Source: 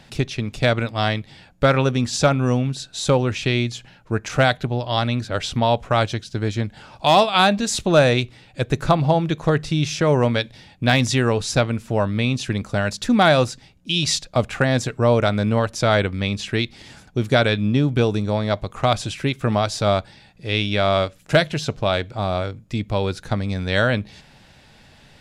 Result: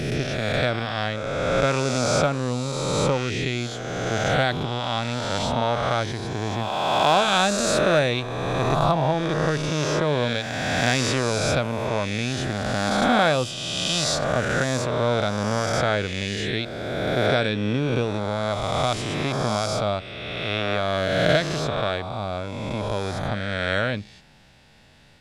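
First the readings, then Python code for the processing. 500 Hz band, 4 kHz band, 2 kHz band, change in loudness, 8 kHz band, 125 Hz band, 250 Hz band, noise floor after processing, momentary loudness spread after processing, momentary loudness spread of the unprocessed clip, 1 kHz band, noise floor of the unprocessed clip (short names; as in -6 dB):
-2.5 dB, -1.5 dB, -1.5 dB, -3.0 dB, 0.0 dB, -5.0 dB, -4.5 dB, -38 dBFS, 8 LU, 9 LU, -2.0 dB, -51 dBFS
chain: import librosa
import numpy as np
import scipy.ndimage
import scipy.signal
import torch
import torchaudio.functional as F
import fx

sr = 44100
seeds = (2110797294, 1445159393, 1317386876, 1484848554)

y = fx.spec_swells(x, sr, rise_s=2.32)
y = y * librosa.db_to_amplitude(-7.5)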